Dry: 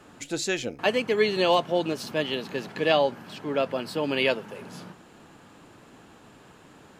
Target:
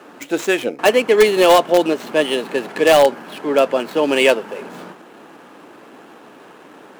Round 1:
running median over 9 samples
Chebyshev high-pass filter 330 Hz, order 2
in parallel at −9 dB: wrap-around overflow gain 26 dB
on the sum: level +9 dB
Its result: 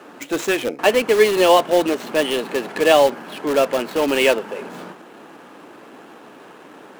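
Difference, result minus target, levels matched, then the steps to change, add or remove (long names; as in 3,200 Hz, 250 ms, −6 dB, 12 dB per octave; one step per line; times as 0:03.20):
wrap-around overflow: distortion +24 dB
change: wrap-around overflow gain 14.5 dB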